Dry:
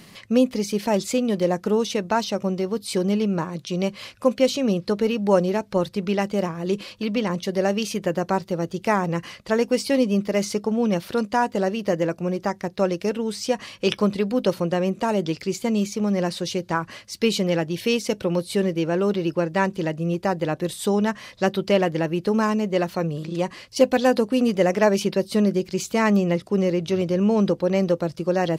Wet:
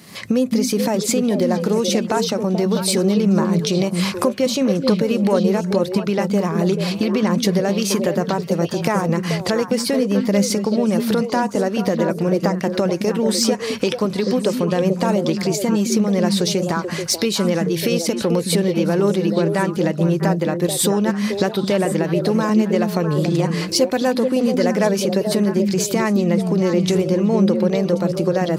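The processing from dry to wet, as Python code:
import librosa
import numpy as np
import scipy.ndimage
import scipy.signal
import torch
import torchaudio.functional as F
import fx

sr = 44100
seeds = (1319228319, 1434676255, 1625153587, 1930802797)

p1 = fx.recorder_agc(x, sr, target_db=-11.0, rise_db_per_s=57.0, max_gain_db=30)
p2 = fx.peak_eq(p1, sr, hz=2900.0, db=-4.5, octaves=0.32)
p3 = 10.0 ** (-20.5 / 20.0) * np.tanh(p2 / 10.0 ** (-20.5 / 20.0))
p4 = p2 + (p3 * 10.0 ** (-12.0 / 20.0))
p5 = scipy.signal.sosfilt(scipy.signal.butter(2, 91.0, 'highpass', fs=sr, output='sos'), p4)
p6 = fx.high_shelf(p5, sr, hz=7400.0, db=5.0)
p7 = fx.echo_stepped(p6, sr, ms=217, hz=180.0, octaves=1.4, feedback_pct=70, wet_db=-1.0)
y = p7 * 10.0 ** (-1.5 / 20.0)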